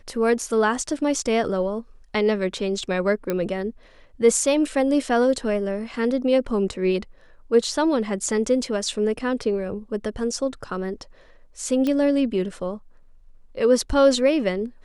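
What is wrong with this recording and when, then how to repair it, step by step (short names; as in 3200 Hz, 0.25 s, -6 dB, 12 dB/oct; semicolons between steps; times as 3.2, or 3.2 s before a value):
3.3 pop -11 dBFS
11.87 pop -13 dBFS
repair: de-click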